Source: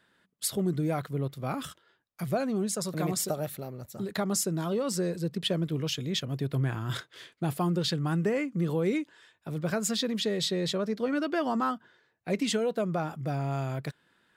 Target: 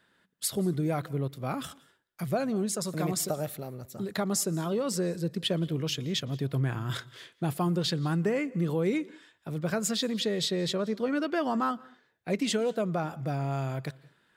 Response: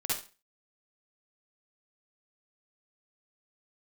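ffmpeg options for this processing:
-filter_complex "[0:a]asplit=2[s0][s1];[1:a]atrim=start_sample=2205,adelay=116[s2];[s1][s2]afir=irnorm=-1:irlink=0,volume=0.0422[s3];[s0][s3]amix=inputs=2:normalize=0"

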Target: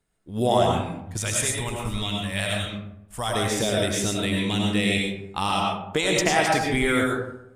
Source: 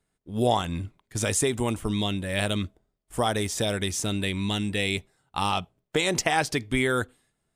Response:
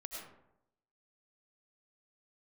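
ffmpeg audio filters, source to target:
-filter_complex "[0:a]asettb=1/sr,asplit=3[s0][s1][s2];[s0]atrim=end=1.174[s3];[s1]atrim=start=1.17:end=3.35,asetpts=PTS-STARTPTS,afade=t=in:d=0.004:c=qsin,afade=t=out:st=2.176:d=0.004:c=qsin,equalizer=f=340:t=o:w=1.8:g=-12.5[s4];[s2]atrim=start=3.346[s5];[s3][s4]acrossfade=d=0.004:c1=hsin:c2=qsin[s6];[s6][s5]acrossfade=d=0.004:c1=qsin:c2=hsin[s7];[1:a]atrim=start_sample=2205[s8];[s7][s8]afir=irnorm=-1:irlink=0,volume=2"

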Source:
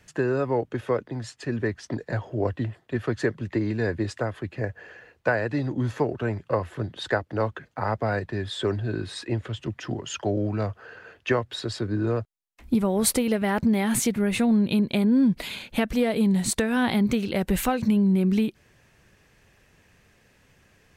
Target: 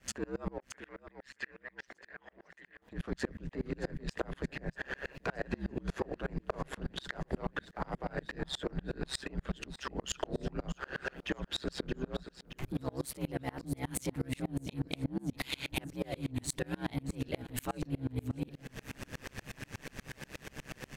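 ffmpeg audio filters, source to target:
-filter_complex "[0:a]aeval=exprs='if(lt(val(0),0),0.708*val(0),val(0))':c=same,aeval=exprs='val(0)*sin(2*PI*67*n/s)':c=same,asoftclip=type=tanh:threshold=0.119,acontrast=88,alimiter=limit=0.0631:level=0:latency=1:release=26,acompressor=threshold=0.00501:ratio=6,asettb=1/sr,asplit=3[s0][s1][s2];[s0]atrim=end=0.584[s3];[s1]atrim=start=0.58:end=2.82,asetpts=PTS-STARTPTS,afade=t=in:d=0.004:c=qsin,afade=t=out:st=2.236:d=0.004:c=qsin,bandpass=f=1900:t=q:w=2.4:csg=0[s4];[s2]atrim=start=2.816[s5];[s3][s4]acrossfade=d=0.004:c1=hsin:c2=qsin[s6];[s6][s5]acrossfade=d=0.004:c1=qsin:c2=hsin,aecho=1:1:623|1246|1869|2492|3115|3738:0.188|0.105|0.0591|0.0331|0.0185|0.0104,aeval=exprs='val(0)*pow(10,-33*if(lt(mod(-8.3*n/s,1),2*abs(-8.3)/1000),1-mod(-8.3*n/s,1)/(2*abs(-8.3)/1000),(mod(-8.3*n/s,1)-2*abs(-8.3)/1000)/(1-2*abs(-8.3)/1000))/20)':c=same,volume=7.94"

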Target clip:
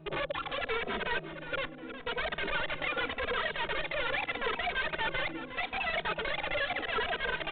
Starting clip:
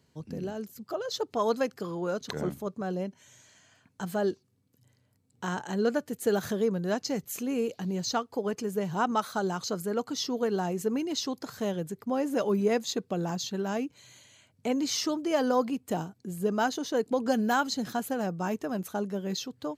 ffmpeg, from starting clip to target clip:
-filter_complex "[0:a]asubboost=boost=9.5:cutoff=200,areverse,acompressor=threshold=0.02:ratio=8,areverse,aeval=exprs='val(0)+0.00112*(sin(2*PI*60*n/s)+sin(2*PI*2*60*n/s)/2+sin(2*PI*3*60*n/s)/3+sin(2*PI*4*60*n/s)/4+sin(2*PI*5*60*n/s)/5)':c=same,aeval=exprs='(mod(44.7*val(0)+1,2)-1)/44.7':c=same,asplit=2[s0][s1];[s1]adelay=949,lowpass=f=2000:p=1,volume=0.282,asplit=2[s2][s3];[s3]adelay=949,lowpass=f=2000:p=1,volume=0.46,asplit=2[s4][s5];[s5]adelay=949,lowpass=f=2000:p=1,volume=0.46,asplit=2[s6][s7];[s7]adelay=949,lowpass=f=2000:p=1,volume=0.46,asplit=2[s8][s9];[s9]adelay=949,lowpass=f=2000:p=1,volume=0.46[s10];[s0][s2][s4][s6][s8][s10]amix=inputs=6:normalize=0,asetrate=115983,aresample=44100,aresample=8000,aresample=44100,asplit=2[s11][s12];[s12]adelay=2.8,afreqshift=-0.81[s13];[s11][s13]amix=inputs=2:normalize=1,volume=2.82"

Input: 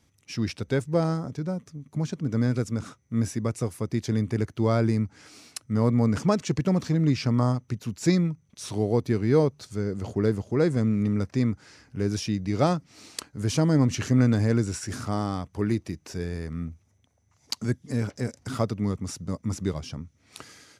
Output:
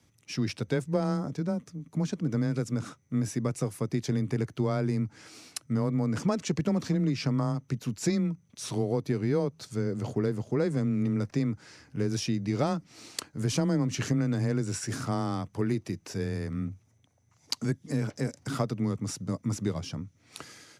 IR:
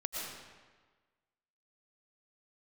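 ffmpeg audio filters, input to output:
-af "acompressor=threshold=0.0708:ratio=6,afreqshift=14"

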